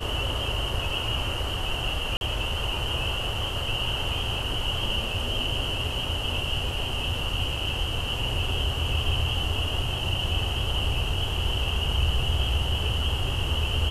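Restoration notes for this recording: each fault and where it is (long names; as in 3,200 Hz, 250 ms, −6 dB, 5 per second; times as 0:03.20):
0:02.17–0:02.21: drop-out 41 ms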